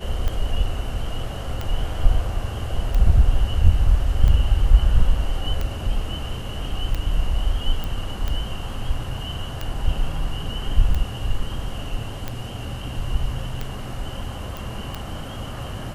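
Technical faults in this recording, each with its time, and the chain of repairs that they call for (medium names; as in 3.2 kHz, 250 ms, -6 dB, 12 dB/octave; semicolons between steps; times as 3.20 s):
tick 45 rpm -13 dBFS
7.84 s: pop
14.57 s: pop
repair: de-click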